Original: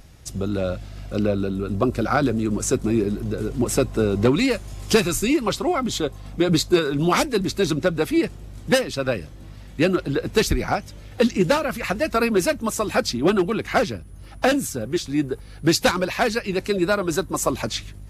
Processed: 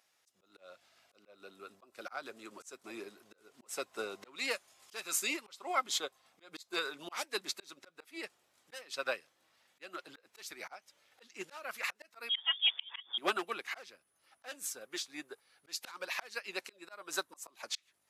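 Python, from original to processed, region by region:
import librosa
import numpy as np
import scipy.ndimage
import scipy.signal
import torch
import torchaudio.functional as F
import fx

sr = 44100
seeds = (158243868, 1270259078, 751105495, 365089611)

y = fx.chain(x, sr, fx.peak_eq(hz=1100.0, db=-7.0, octaves=0.24),
    fx.freq_invert(carrier_hz=3500), at=(12.29, 13.18))
y = scipy.signal.sosfilt(scipy.signal.butter(2, 830.0, 'highpass', fs=sr, output='sos'), y)
y = fx.auto_swell(y, sr, attack_ms=282.0)
y = fx.upward_expand(y, sr, threshold_db=-49.0, expansion=1.5)
y = y * librosa.db_to_amplitude(-3.0)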